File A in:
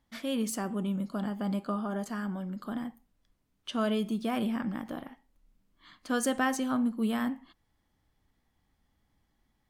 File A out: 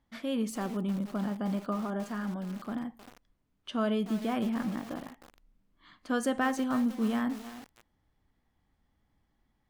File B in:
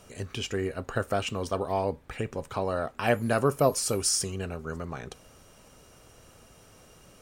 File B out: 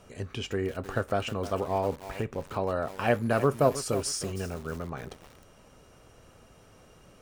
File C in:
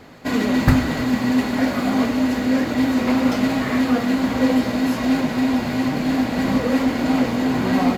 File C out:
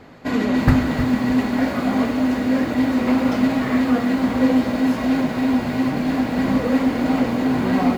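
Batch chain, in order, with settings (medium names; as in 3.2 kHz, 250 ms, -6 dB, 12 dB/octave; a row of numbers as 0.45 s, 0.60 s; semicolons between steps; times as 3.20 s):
treble shelf 4 kHz -8.5 dB; bit-crushed delay 312 ms, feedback 35%, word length 6-bit, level -12 dB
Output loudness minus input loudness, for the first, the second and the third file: 0.0 LU, -1.0 LU, 0.0 LU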